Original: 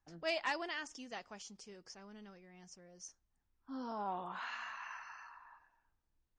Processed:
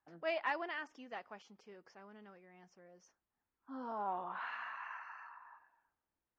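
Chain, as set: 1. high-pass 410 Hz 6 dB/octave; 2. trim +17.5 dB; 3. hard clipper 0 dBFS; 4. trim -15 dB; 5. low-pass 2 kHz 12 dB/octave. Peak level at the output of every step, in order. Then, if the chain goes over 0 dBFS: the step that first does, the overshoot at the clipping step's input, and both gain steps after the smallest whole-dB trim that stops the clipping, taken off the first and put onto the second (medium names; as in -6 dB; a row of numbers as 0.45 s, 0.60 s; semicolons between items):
-23.5 dBFS, -6.0 dBFS, -6.0 dBFS, -21.0 dBFS, -24.0 dBFS; nothing clips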